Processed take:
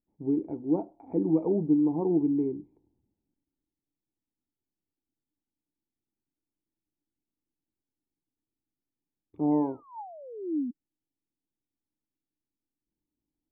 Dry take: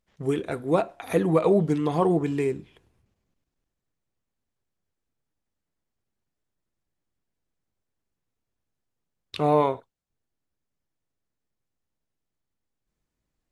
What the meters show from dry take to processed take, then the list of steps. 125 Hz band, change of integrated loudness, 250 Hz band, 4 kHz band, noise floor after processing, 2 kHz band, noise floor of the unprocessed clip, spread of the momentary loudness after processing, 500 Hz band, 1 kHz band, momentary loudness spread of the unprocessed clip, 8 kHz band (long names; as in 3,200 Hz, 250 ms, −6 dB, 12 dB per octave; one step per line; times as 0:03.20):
−8.0 dB, −4.0 dB, +1.0 dB, below −35 dB, below −85 dBFS, below −30 dB, −84 dBFS, 17 LU, −8.0 dB, −12.0 dB, 8 LU, can't be measured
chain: sound drawn into the spectrogram fall, 0:09.51–0:10.71, 230–2,100 Hz −31 dBFS
formant resonators in series u
level +4 dB